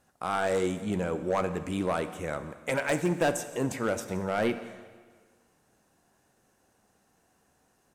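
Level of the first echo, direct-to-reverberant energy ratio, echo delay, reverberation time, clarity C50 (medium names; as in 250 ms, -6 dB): -21.0 dB, 10.5 dB, 172 ms, 1.6 s, 12.0 dB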